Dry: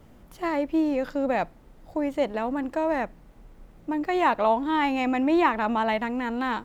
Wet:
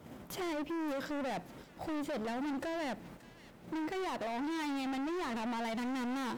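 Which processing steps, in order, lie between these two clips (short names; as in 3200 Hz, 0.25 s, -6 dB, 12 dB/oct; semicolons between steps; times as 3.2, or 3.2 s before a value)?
HPF 110 Hz 12 dB/oct; gate -54 dBFS, range -7 dB; dynamic EQ 1200 Hz, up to -6 dB, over -36 dBFS, Q 0.85; in parallel at +2 dB: compressor, threshold -38 dBFS, peak gain reduction 17 dB; on the sum: limiter -23 dBFS, peak gain reduction 10.5 dB; overloaded stage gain 35 dB; on a send: thin delay 0.602 s, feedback 50%, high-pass 1800 Hz, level -14 dB; on the sum: speed mistake 24 fps film run at 25 fps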